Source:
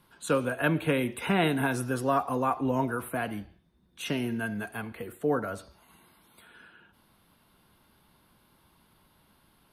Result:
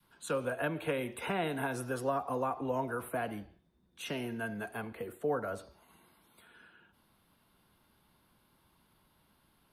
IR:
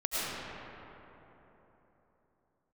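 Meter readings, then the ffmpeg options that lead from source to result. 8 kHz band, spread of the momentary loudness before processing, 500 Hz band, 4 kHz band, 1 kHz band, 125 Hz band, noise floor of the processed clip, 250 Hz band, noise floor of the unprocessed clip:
-6.0 dB, 12 LU, -4.5 dB, -7.5 dB, -6.0 dB, -9.0 dB, -71 dBFS, -9.0 dB, -65 dBFS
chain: -filter_complex "[0:a]acrossover=split=200|500[s0][s1][s2];[s0]acompressor=threshold=0.0126:ratio=4[s3];[s1]acompressor=threshold=0.00708:ratio=4[s4];[s2]acompressor=threshold=0.0316:ratio=4[s5];[s3][s4][s5]amix=inputs=3:normalize=0,adynamicequalizer=threshold=0.00447:dfrequency=500:dqfactor=0.76:tfrequency=500:tqfactor=0.76:attack=5:release=100:ratio=0.375:range=3.5:mode=boostabove:tftype=bell,volume=0.531"

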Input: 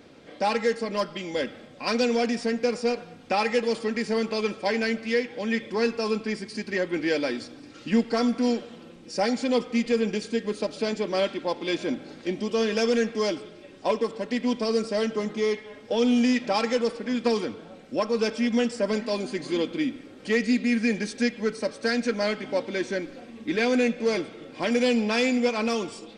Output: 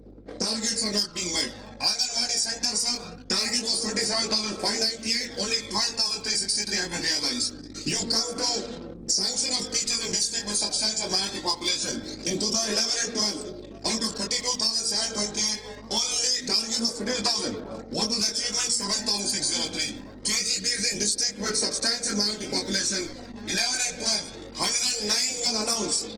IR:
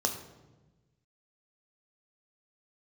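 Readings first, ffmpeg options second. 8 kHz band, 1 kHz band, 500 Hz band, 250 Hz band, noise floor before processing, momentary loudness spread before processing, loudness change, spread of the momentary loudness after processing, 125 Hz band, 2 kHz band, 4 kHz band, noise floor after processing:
+18.5 dB, -4.0 dB, -9.5 dB, -8.0 dB, -47 dBFS, 9 LU, +1.5 dB, 6 LU, -0.5 dB, -2.5 dB, +11.5 dB, -42 dBFS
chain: -filter_complex "[0:a]afftfilt=real='re*lt(hypot(re,im),0.355)':imag='im*lt(hypot(re,im),0.355)':win_size=1024:overlap=0.75,flanger=delay=19.5:depth=4.5:speed=0.52,asplit=2[s0][s1];[s1]adelay=1166,volume=0.126,highshelf=f=4000:g=-26.2[s2];[s0][s2]amix=inputs=2:normalize=0,anlmdn=0.00631,adynamicequalizer=threshold=0.00158:dfrequency=160:dqfactor=2.9:tfrequency=160:tqfactor=2.9:attack=5:release=100:ratio=0.375:range=2:mode=cutabove:tftype=bell,bandreject=f=131.1:t=h:w=4,bandreject=f=262.2:t=h:w=4,bandreject=f=393.3:t=h:w=4,bandreject=f=524.4:t=h:w=4,bandreject=f=655.5:t=h:w=4,bandreject=f=786.6:t=h:w=4,bandreject=f=917.7:t=h:w=4,bandreject=f=1048.8:t=h:w=4,bandreject=f=1179.9:t=h:w=4,bandreject=f=1311:t=h:w=4,bandreject=f=1442.1:t=h:w=4,aphaser=in_gain=1:out_gain=1:delay=1.3:decay=0.45:speed=0.23:type=sinusoidal,aexciter=amount=10.8:drive=5.5:freq=4300,aeval=exprs='val(0)+0.00178*(sin(2*PI*50*n/s)+sin(2*PI*2*50*n/s)/2+sin(2*PI*3*50*n/s)/3+sin(2*PI*4*50*n/s)/4+sin(2*PI*5*50*n/s)/5)':c=same,acompressor=threshold=0.0398:ratio=8,volume=2" -ar 48000 -c:a libopus -b:a 20k

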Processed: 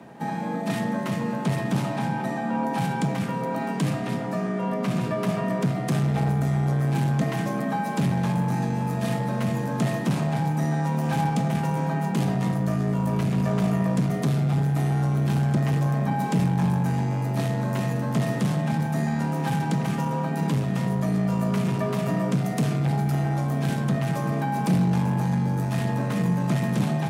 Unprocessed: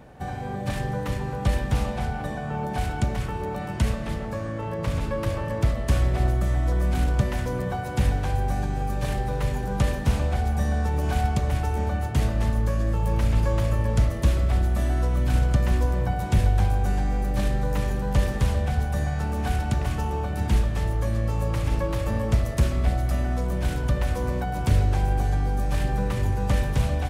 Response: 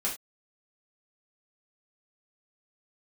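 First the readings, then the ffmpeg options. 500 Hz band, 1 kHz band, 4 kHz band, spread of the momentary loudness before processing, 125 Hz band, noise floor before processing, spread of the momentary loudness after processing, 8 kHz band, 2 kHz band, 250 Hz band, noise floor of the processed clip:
+0.5 dB, +2.5 dB, -0.5 dB, 6 LU, +0.5 dB, -31 dBFS, 4 LU, 0.0 dB, +0.5 dB, +7.0 dB, -29 dBFS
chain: -filter_complex "[0:a]asoftclip=type=tanh:threshold=0.0944,afreqshift=80,asplit=2[s0][s1];[1:a]atrim=start_sample=2205[s2];[s1][s2]afir=irnorm=-1:irlink=0,volume=0.316[s3];[s0][s3]amix=inputs=2:normalize=0"

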